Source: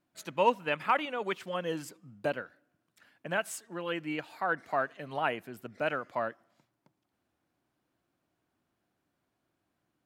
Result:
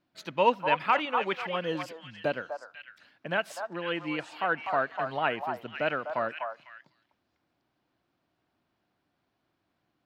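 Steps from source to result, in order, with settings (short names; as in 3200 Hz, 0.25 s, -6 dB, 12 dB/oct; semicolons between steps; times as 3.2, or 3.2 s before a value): resonant high shelf 6100 Hz -9.5 dB, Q 1.5; delay with a stepping band-pass 0.249 s, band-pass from 890 Hz, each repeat 1.4 oct, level -3 dB; gain +2 dB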